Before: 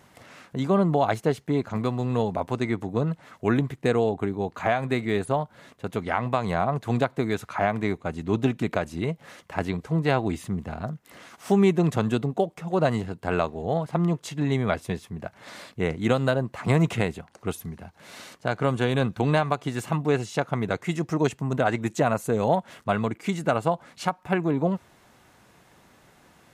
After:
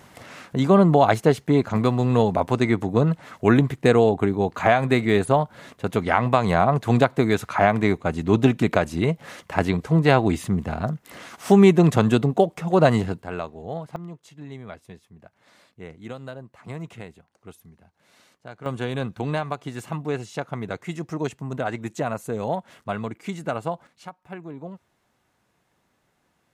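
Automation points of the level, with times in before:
+6 dB
from 0:13.22 −6 dB
from 0:13.96 −14 dB
from 0:18.66 −4 dB
from 0:23.87 −13 dB

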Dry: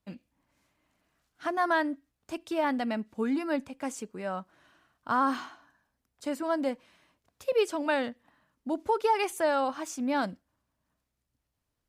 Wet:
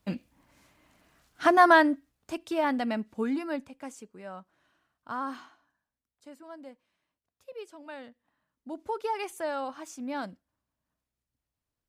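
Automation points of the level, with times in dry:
0:01.54 +10 dB
0:02.39 +1 dB
0:03.14 +1 dB
0:03.99 −8 dB
0:05.25 −8 dB
0:06.40 −16.5 dB
0:07.80 −16.5 dB
0:08.90 −6 dB

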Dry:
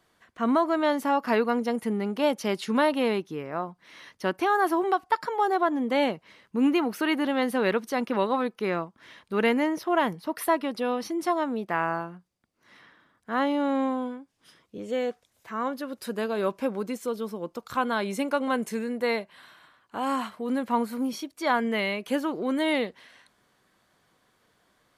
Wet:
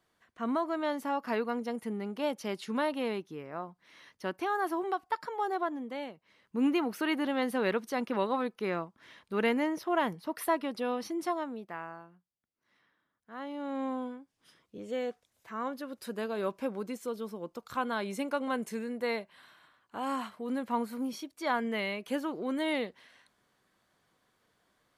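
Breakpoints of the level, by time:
0:05.63 −8 dB
0:06.13 −17.5 dB
0:06.59 −5 dB
0:11.21 −5 dB
0:11.96 −17 dB
0:13.35 −17 dB
0:13.95 −6 dB

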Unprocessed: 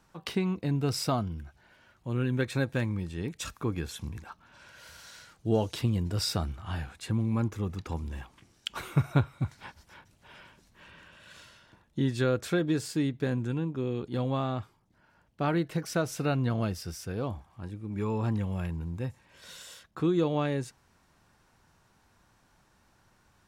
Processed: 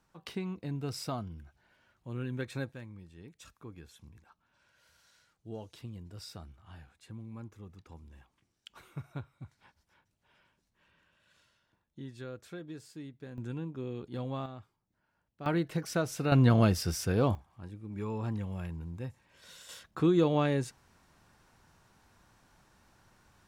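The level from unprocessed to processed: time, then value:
−8 dB
from 0:02.72 −16.5 dB
from 0:13.38 −7 dB
from 0:14.46 −13.5 dB
from 0:15.46 −2 dB
from 0:16.32 +6 dB
from 0:17.35 −5.5 dB
from 0:19.69 +1 dB

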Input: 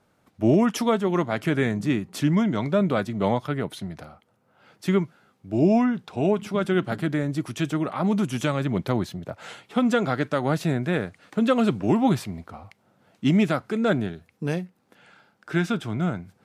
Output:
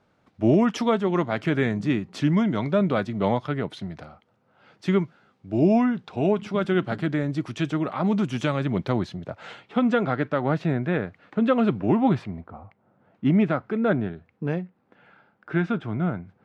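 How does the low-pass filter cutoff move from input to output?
0:09.21 4,900 Hz
0:10.13 2,600 Hz
0:12.20 2,600 Hz
0:12.53 1,200 Hz
0:13.52 2,100 Hz

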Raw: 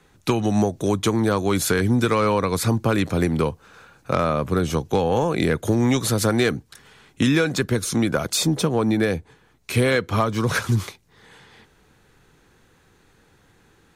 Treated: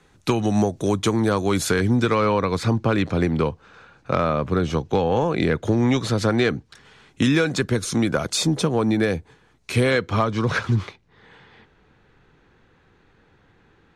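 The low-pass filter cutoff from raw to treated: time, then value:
0:01.57 9,700 Hz
0:02.26 4,700 Hz
0:06.53 4,700 Hz
0:07.22 8,700 Hz
0:09.80 8,700 Hz
0:10.81 3,300 Hz

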